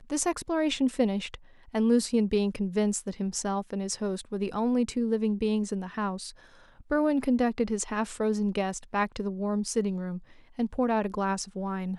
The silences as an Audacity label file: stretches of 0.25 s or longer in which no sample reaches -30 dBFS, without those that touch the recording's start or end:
1.350000	1.750000	silence
6.270000	6.910000	silence
10.170000	10.590000	silence